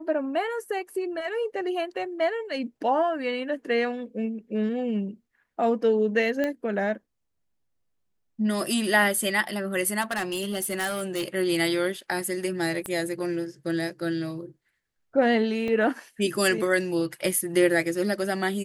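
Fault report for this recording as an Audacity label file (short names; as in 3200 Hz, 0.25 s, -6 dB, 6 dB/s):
6.440000	6.440000	pop -15 dBFS
10.010000	11.240000	clipped -24 dBFS
12.860000	12.860000	pop -18 dBFS
15.680000	15.680000	gap 2.1 ms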